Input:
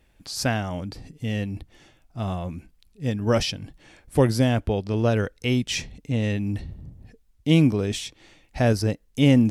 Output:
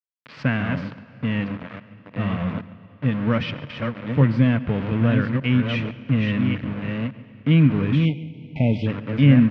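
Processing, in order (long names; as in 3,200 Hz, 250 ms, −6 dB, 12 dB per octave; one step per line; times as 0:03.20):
delay that plays each chunk backwards 600 ms, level −6 dB
dynamic equaliser 540 Hz, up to −6 dB, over −33 dBFS, Q 0.88
in parallel at −1.5 dB: brickwall limiter −17 dBFS, peak gain reduction 10 dB
on the sum: centre clipping without the shift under −25.5 dBFS
loudspeaker in its box 130–2,600 Hz, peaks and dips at 140 Hz +7 dB, 250 Hz +3 dB, 370 Hz −9 dB, 770 Hz −10 dB
slap from a distant wall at 24 metres, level −19 dB
on a send at −17 dB: convolution reverb RT60 3.8 s, pre-delay 42 ms
on the sum: time-frequency box erased 0:08.05–0:08.87, 930–2,000 Hz
every ending faded ahead of time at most 250 dB per second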